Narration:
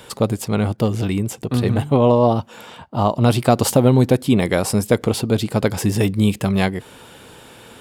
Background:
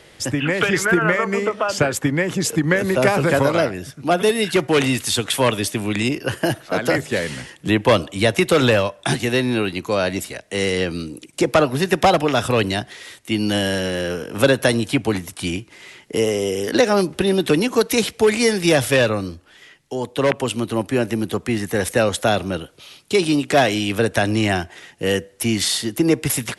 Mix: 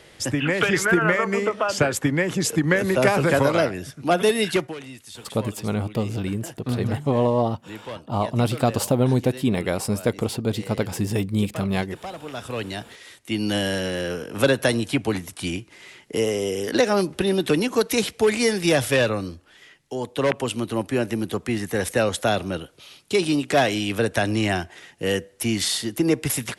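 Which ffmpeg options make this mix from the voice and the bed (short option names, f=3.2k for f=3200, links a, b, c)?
-filter_complex "[0:a]adelay=5150,volume=-6dB[a];[1:a]volume=15dB,afade=t=out:st=4.51:d=0.24:silence=0.11885,afade=t=in:st=12.15:d=1.37:silence=0.141254[b];[a][b]amix=inputs=2:normalize=0"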